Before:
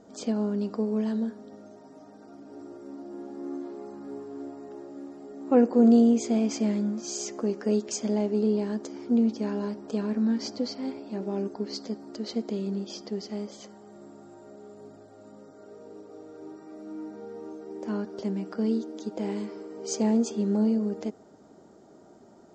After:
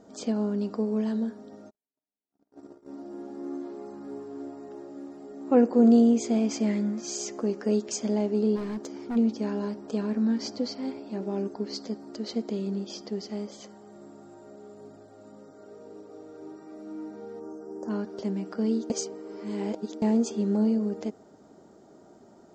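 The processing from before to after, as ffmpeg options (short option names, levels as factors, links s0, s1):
-filter_complex "[0:a]asplit=3[s0][s1][s2];[s0]afade=t=out:st=1.69:d=0.02[s3];[s1]agate=range=0.00251:threshold=0.00708:ratio=16:release=100:detection=peak,afade=t=in:st=1.69:d=0.02,afade=t=out:st=2.92:d=0.02[s4];[s2]afade=t=in:st=2.92:d=0.02[s5];[s3][s4][s5]amix=inputs=3:normalize=0,asettb=1/sr,asplit=3[s6][s7][s8];[s6]atrim=end=6.674[s9];[s7]atrim=start=6.67:end=7.16,asetpts=PTS-STARTPTS,afade=t=in:d=0.004:c=qsin,afade=t=out:st=0.486:d=0.004:c=qsin,equalizer=f=2000:t=o:w=0.36:g=8.5[s10];[s8]atrim=start=7.156[s11];[s9][s10]acrossfade=d=0.004:c1=hsin:c2=qsin[s12];[s12][s11]acrossfade=d=0.004:c1=qsin:c2=hsin,asplit=3[s13][s14][s15];[s13]afade=t=out:st=8.55:d=0.02[s16];[s14]asoftclip=type=hard:threshold=0.0355,afade=t=in:st=8.55:d=0.02,afade=t=out:st=9.15:d=0.02[s17];[s15]afade=t=in:st=9.15:d=0.02[s18];[s16][s17][s18]amix=inputs=3:normalize=0,asplit=3[s19][s20][s21];[s19]afade=t=out:st=17.39:d=0.02[s22];[s20]asuperstop=centerf=2900:order=8:qfactor=0.85,afade=t=in:st=17.39:d=0.02,afade=t=out:st=17.89:d=0.02[s23];[s21]afade=t=in:st=17.89:d=0.02[s24];[s22][s23][s24]amix=inputs=3:normalize=0,asplit=3[s25][s26][s27];[s25]atrim=end=18.902[s28];[s26]atrim=start=18.898:end=20.022,asetpts=PTS-STARTPTS,areverse[s29];[s27]atrim=start=20.018[s30];[s28][s29]acrossfade=d=0.004:c1=hsin:c2=hsin[s31];[s31][s30]acrossfade=d=0.004:c1=hsin:c2=hsin"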